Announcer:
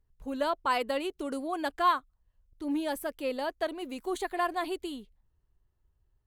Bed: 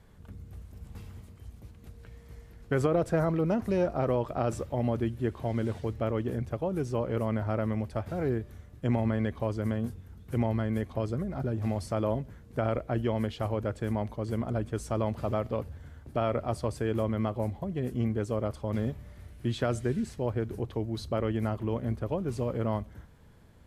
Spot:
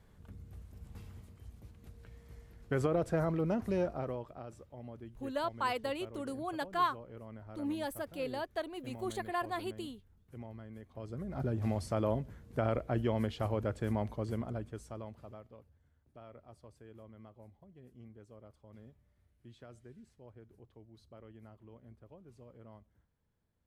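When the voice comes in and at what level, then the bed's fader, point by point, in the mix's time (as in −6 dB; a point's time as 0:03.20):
4.95 s, −5.5 dB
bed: 0:03.80 −5 dB
0:04.49 −19 dB
0:10.83 −19 dB
0:11.41 −3 dB
0:14.20 −3 dB
0:15.61 −24.5 dB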